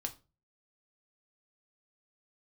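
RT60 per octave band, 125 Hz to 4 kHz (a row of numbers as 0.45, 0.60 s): 0.55, 0.40, 0.35, 0.30, 0.25, 0.25 s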